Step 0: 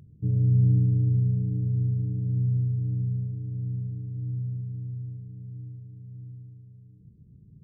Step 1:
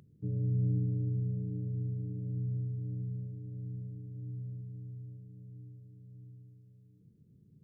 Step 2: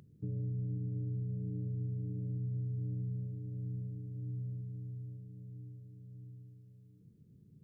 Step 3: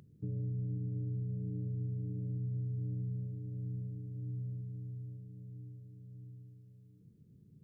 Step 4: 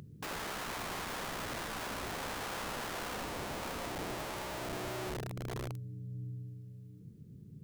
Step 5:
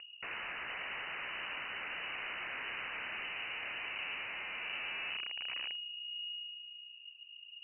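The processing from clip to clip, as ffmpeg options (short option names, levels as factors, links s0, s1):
-af "highpass=f=370:p=1"
-af "alimiter=level_in=2.51:limit=0.0631:level=0:latency=1:release=223,volume=0.398,volume=1.12"
-af anull
-af "aeval=exprs='(mod(150*val(0)+1,2)-1)/150':c=same,volume=2.66"
-af "lowpass=f=2600:t=q:w=0.5098,lowpass=f=2600:t=q:w=0.6013,lowpass=f=2600:t=q:w=0.9,lowpass=f=2600:t=q:w=2.563,afreqshift=-3000,volume=0.891"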